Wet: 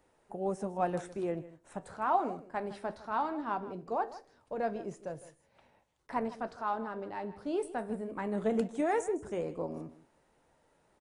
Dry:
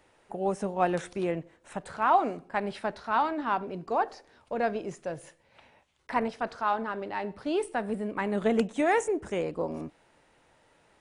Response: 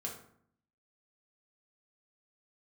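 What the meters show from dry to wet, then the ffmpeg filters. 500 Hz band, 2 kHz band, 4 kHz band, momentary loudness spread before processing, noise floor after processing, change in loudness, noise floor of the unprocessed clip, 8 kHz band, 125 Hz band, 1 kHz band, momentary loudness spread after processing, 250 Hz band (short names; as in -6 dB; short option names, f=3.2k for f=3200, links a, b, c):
-5.0 dB, -9.5 dB, -11.0 dB, 12 LU, -71 dBFS, -5.5 dB, -65 dBFS, -6.0 dB, -4.5 dB, -6.0 dB, 13 LU, -4.5 dB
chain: -filter_complex "[0:a]equalizer=f=2.7k:w=0.68:g=-7.5,flanger=delay=4.1:depth=8.5:regen=-73:speed=0.19:shape=triangular,asplit=2[a][b];[b]aecho=0:1:157:0.15[c];[a][c]amix=inputs=2:normalize=0"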